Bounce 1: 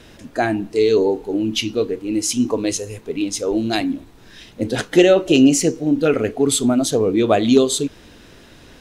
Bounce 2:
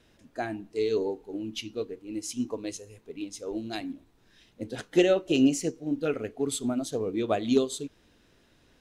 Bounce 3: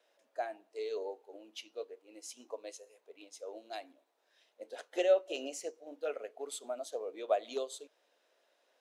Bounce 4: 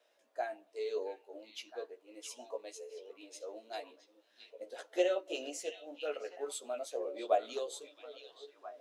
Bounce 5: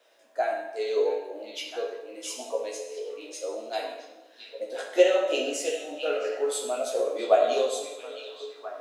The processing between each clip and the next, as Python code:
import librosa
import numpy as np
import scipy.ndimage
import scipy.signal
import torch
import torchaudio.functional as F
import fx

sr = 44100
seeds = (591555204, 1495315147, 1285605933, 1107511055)

y1 = fx.upward_expand(x, sr, threshold_db=-26.0, expansion=1.5)
y1 = y1 * 10.0 ** (-8.5 / 20.0)
y2 = fx.ladder_highpass(y1, sr, hz=510.0, resonance_pct=55)
y3 = fx.chorus_voices(y2, sr, voices=6, hz=0.25, base_ms=15, depth_ms=1.9, mix_pct=40)
y3 = fx.echo_stepped(y3, sr, ms=667, hz=3200.0, octaves=-1.4, feedback_pct=70, wet_db=-6.0)
y3 = y3 * 10.0 ** (3.0 / 20.0)
y4 = fx.rev_plate(y3, sr, seeds[0], rt60_s=1.0, hf_ratio=0.8, predelay_ms=0, drr_db=-0.5)
y4 = y4 * 10.0 ** (8.5 / 20.0)